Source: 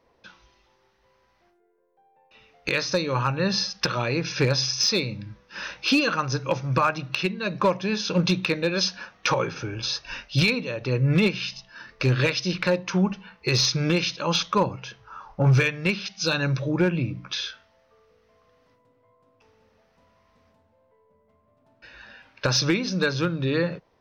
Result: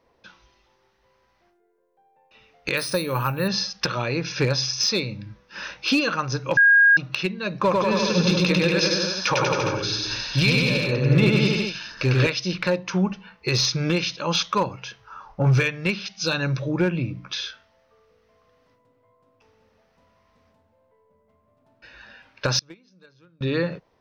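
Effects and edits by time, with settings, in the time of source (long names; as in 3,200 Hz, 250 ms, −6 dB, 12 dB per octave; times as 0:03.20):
0:02.77–0:03.48: bad sample-rate conversion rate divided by 3×, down filtered, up hold
0:06.57–0:06.97: beep over 1,630 Hz −11 dBFS
0:07.57–0:12.27: bouncing-ball delay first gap 100 ms, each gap 0.9×, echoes 5, each echo −2 dB
0:14.37–0:15.14: tilt shelving filter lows −3 dB, about 820 Hz
0:22.59–0:23.41: noise gate −17 dBFS, range −31 dB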